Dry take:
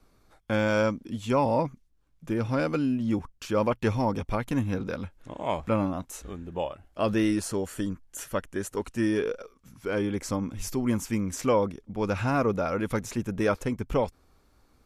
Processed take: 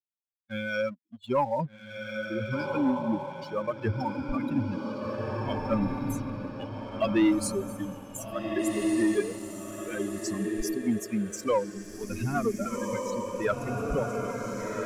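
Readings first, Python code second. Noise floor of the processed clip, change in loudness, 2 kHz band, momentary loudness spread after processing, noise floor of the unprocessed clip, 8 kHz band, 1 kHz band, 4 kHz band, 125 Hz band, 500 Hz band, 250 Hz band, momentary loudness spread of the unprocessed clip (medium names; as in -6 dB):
-54 dBFS, -2.0 dB, -1.0 dB, 10 LU, -64 dBFS, +0.5 dB, -2.0 dB, -1.5 dB, -3.5 dB, -2.0 dB, -0.5 dB, 9 LU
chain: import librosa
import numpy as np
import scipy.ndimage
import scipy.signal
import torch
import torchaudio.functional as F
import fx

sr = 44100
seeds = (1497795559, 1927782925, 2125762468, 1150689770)

y = fx.bin_expand(x, sr, power=3.0)
y = fx.echo_diffused(y, sr, ms=1588, feedback_pct=41, wet_db=-3.5)
y = fx.rider(y, sr, range_db=10, speed_s=2.0)
y = fx.leveller(y, sr, passes=1)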